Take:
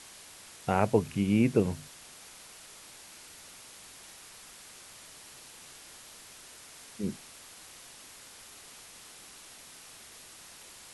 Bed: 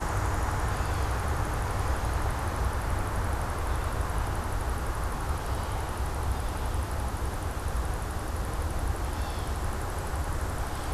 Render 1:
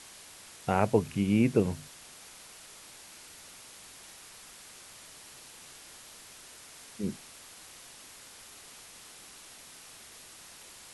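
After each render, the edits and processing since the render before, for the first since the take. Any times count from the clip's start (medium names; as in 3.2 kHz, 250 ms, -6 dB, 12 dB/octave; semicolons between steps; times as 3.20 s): no audible change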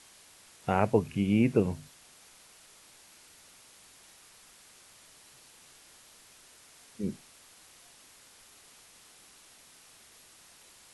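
noise print and reduce 6 dB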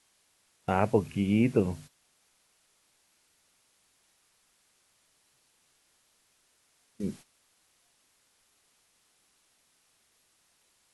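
gate -45 dBFS, range -13 dB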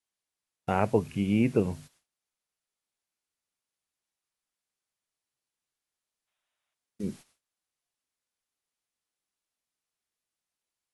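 gate with hold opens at -55 dBFS; 6.28–6.74 s: time-frequency box 540–3900 Hz +9 dB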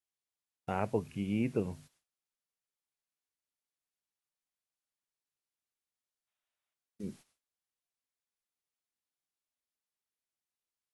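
trim -7.5 dB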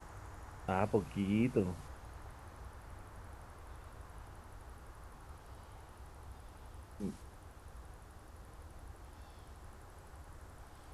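add bed -22 dB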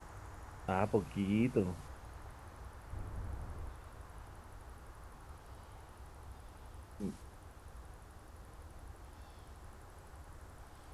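2.93–3.69 s: bass shelf 380 Hz +9.5 dB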